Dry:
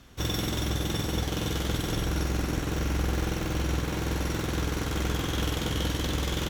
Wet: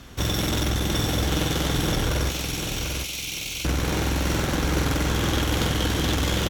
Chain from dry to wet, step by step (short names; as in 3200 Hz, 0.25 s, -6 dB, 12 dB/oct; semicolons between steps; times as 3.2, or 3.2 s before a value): 2.29–3.65 steep high-pass 2200 Hz 96 dB/oct; limiter -21 dBFS, peak gain reduction 5.5 dB; one-sided clip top -33 dBFS; on a send: feedback echo 0.744 s, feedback 29%, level -6 dB; on the sum: gain +9 dB